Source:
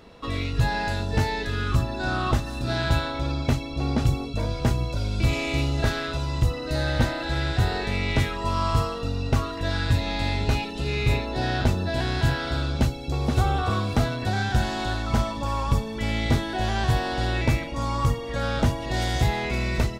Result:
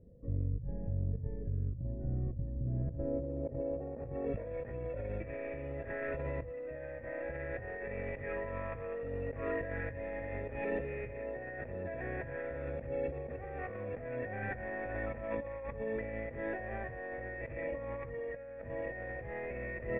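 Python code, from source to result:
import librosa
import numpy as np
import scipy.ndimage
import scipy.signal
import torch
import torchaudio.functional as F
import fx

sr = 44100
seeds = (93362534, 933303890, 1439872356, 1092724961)

y = fx.tracing_dist(x, sr, depth_ms=0.39)
y = fx.formant_cascade(y, sr, vowel='e')
y = fx.filter_sweep_lowpass(y, sr, from_hz=140.0, to_hz=2000.0, start_s=2.64, end_s=4.48, q=1.1)
y = fx.over_compress(y, sr, threshold_db=-48.0, ratio=-1.0)
y = y * 10.0 ** (8.5 / 20.0)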